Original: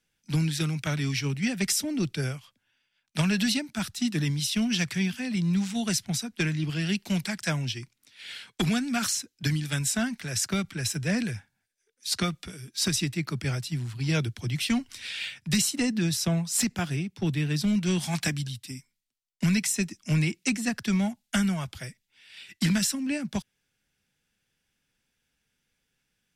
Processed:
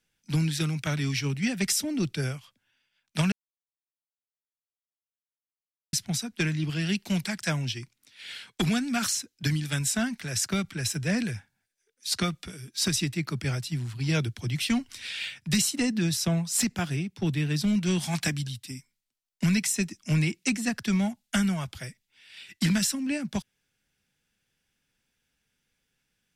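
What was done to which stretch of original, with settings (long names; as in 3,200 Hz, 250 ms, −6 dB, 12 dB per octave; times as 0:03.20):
0:03.32–0:05.93: silence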